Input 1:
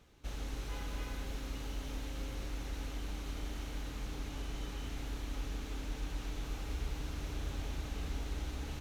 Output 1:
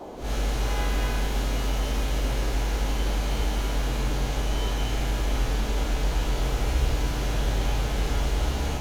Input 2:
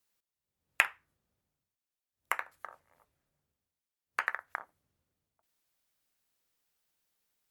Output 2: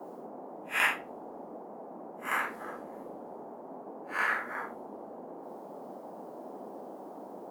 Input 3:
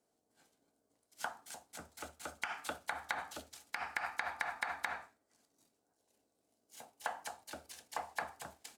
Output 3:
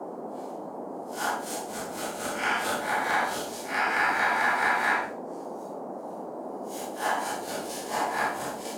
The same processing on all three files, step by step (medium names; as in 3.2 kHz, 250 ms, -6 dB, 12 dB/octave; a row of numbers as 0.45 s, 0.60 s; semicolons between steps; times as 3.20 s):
spectral blur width 109 ms; gated-style reverb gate 90 ms falling, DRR -2.5 dB; band noise 200–840 Hz -51 dBFS; peak normalisation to -12 dBFS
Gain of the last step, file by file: +11.5 dB, +6.5 dB, +13.5 dB